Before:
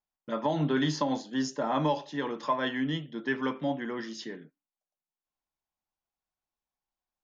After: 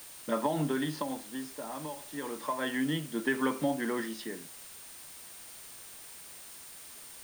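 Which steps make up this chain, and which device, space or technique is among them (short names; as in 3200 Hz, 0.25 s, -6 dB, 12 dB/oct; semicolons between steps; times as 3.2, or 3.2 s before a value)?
medium wave at night (BPF 150–3600 Hz; compressor, threshold -29 dBFS, peak gain reduction 7 dB; tremolo 0.29 Hz, depth 76%; whine 9000 Hz -56 dBFS; white noise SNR 14 dB); gain +4.5 dB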